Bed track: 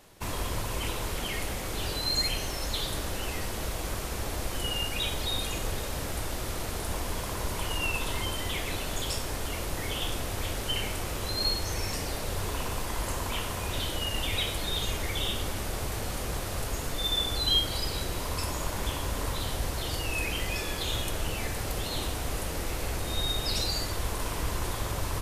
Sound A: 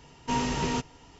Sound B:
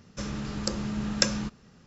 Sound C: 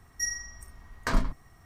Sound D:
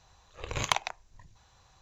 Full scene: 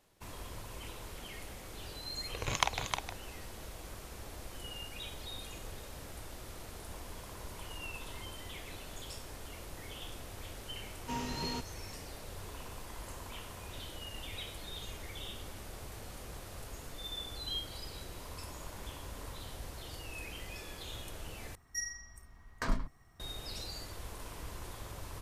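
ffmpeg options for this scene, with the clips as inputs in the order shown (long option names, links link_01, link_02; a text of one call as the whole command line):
ffmpeg -i bed.wav -i cue0.wav -i cue1.wav -i cue2.wav -i cue3.wav -filter_complex "[0:a]volume=-13.5dB[link_01];[4:a]aecho=1:1:310:0.501[link_02];[link_01]asplit=2[link_03][link_04];[link_03]atrim=end=21.554[link_05];[3:a]atrim=end=1.65,asetpts=PTS-STARTPTS,volume=-7dB[link_06];[link_04]atrim=start=23.196[link_07];[link_02]atrim=end=1.81,asetpts=PTS-STARTPTS,volume=-3dB,afade=type=in:duration=0.004:curve=hsin,afade=type=out:start_time=1.806:duration=0.004:curve=hsin,adelay=1910[link_08];[1:a]atrim=end=1.19,asetpts=PTS-STARTPTS,volume=-10.5dB,afade=type=in:duration=0.004:curve=hsin,afade=type=out:start_time=1.186:duration=0.004:curve=hsin,adelay=10800[link_09];[link_05][link_06]acrossfade=duration=0.004:curve1=hsin:curve2=hsin[link_10];[link_10][link_07]acrossfade=duration=0.004:curve1=hsin:curve2=hsin[link_11];[link_11][link_08][link_09]amix=inputs=3:normalize=0" out.wav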